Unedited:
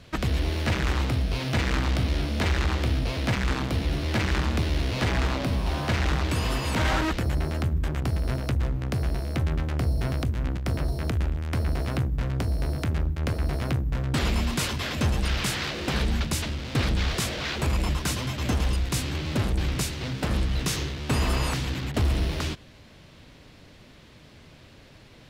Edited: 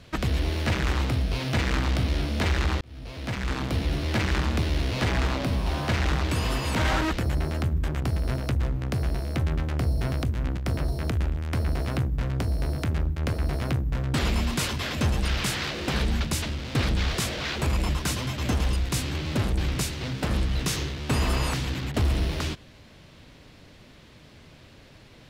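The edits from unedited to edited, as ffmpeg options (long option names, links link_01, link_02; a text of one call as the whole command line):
ffmpeg -i in.wav -filter_complex "[0:a]asplit=2[link_01][link_02];[link_01]atrim=end=2.81,asetpts=PTS-STARTPTS,afade=type=out:start_time=2.806:duration=0.004:curve=hsin[link_03];[link_02]atrim=start=2.81,asetpts=PTS-STARTPTS,afade=type=in:duration=0.94[link_04];[link_03][link_04]concat=n=2:v=0:a=1" out.wav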